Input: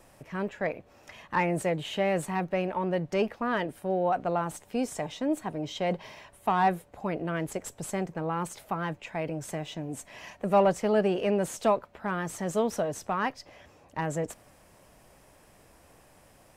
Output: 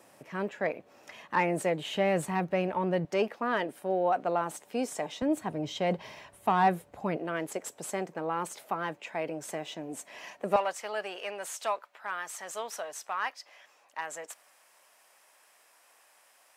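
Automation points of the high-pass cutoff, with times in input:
200 Hz
from 1.95 s 76 Hz
from 3.05 s 260 Hz
from 5.22 s 73 Hz
from 7.17 s 290 Hz
from 10.56 s 1 kHz

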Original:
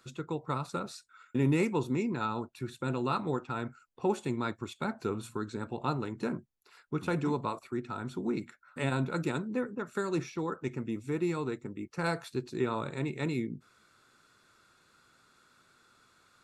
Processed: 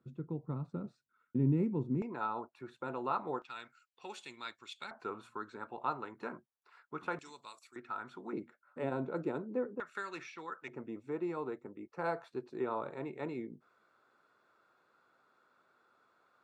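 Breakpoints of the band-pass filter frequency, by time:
band-pass filter, Q 1.1
180 Hz
from 2.02 s 830 Hz
from 3.42 s 3.4 kHz
from 4.91 s 1.1 kHz
from 7.19 s 6.1 kHz
from 7.76 s 1.3 kHz
from 8.33 s 510 Hz
from 9.80 s 2 kHz
from 10.68 s 700 Hz

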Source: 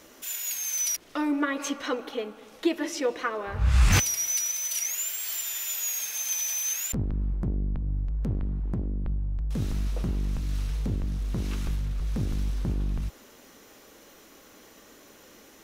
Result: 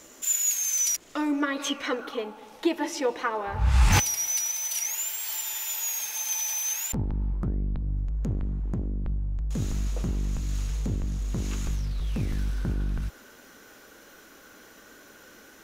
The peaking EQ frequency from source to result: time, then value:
peaking EQ +12.5 dB 0.23 oct
1.33 s 7.1 kHz
2.26 s 870 Hz
7.33 s 870 Hz
7.91 s 6.8 kHz
11.72 s 6.8 kHz
12.43 s 1.5 kHz

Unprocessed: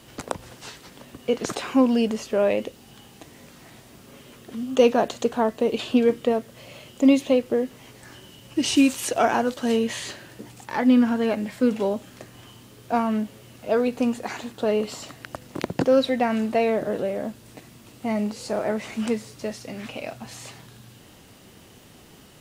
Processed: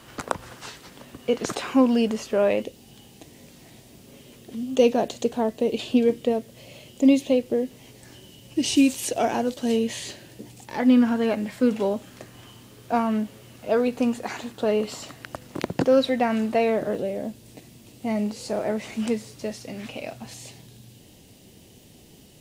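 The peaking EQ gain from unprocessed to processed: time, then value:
peaking EQ 1.3 kHz 1.1 oct
+6.5 dB
from 0.66 s +0.5 dB
from 2.62 s -10.5 dB
from 10.80 s -0.5 dB
from 16.95 s -11 dB
from 18.07 s -5 dB
from 20.34 s -15 dB

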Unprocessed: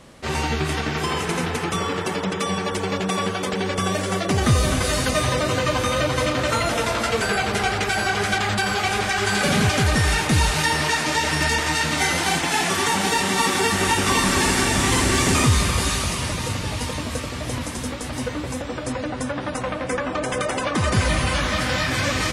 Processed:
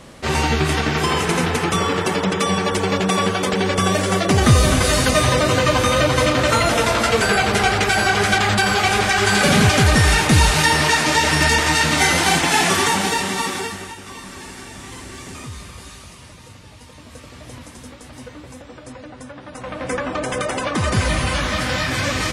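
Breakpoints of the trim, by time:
12.72 s +5 dB
13.59 s -4.5 dB
13.97 s -16.5 dB
16.85 s -16.5 dB
17.33 s -10 dB
19.47 s -10 dB
19.87 s +1 dB

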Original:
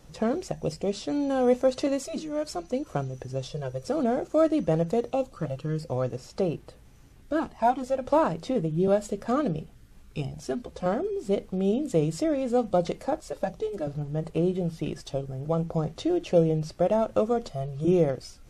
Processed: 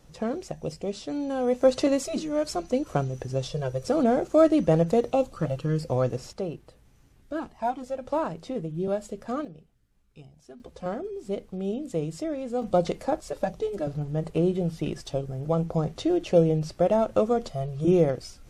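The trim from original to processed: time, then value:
-3 dB
from 1.62 s +3.5 dB
from 6.33 s -5 dB
from 9.45 s -16.5 dB
from 10.60 s -5 dB
from 12.62 s +1.5 dB

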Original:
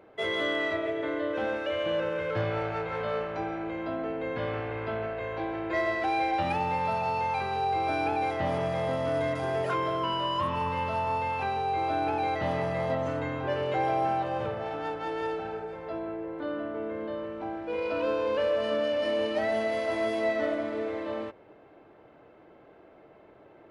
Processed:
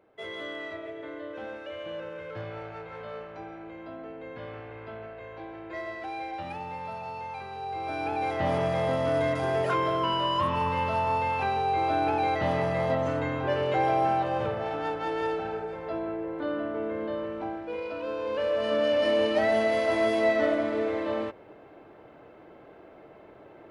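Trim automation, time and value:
7.57 s -8.5 dB
8.50 s +2.5 dB
17.38 s +2.5 dB
18.00 s -6 dB
18.92 s +4 dB

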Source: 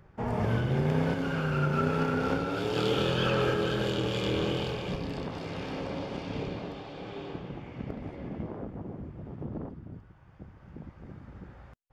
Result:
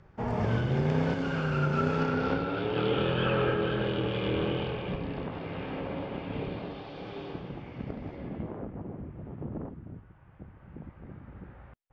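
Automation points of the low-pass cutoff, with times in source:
low-pass 24 dB/octave
1.91 s 7.1 kHz
2.74 s 3.1 kHz
6.29 s 3.1 kHz
7.01 s 5.6 kHz
8.11 s 5.6 kHz
8.65 s 3 kHz

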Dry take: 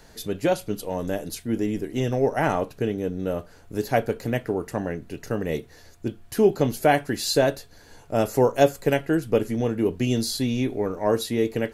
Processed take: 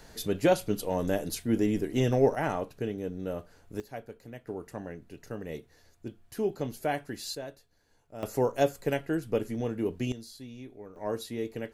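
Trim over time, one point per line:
-1 dB
from 2.35 s -7.5 dB
from 3.80 s -19 dB
from 4.47 s -11.5 dB
from 7.35 s -20 dB
from 8.23 s -7.5 dB
from 10.12 s -20 dB
from 10.96 s -11 dB

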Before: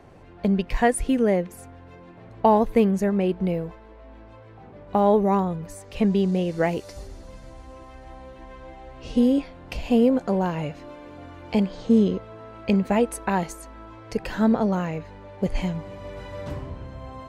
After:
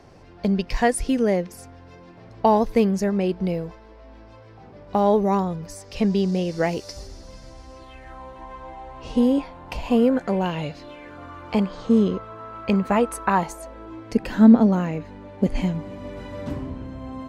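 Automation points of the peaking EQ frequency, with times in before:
peaking EQ +12 dB 0.58 oct
7.77 s 5.2 kHz
8.24 s 930 Hz
9.82 s 930 Hz
10.79 s 4.9 kHz
11.19 s 1.2 kHz
13.34 s 1.2 kHz
14.08 s 250 Hz

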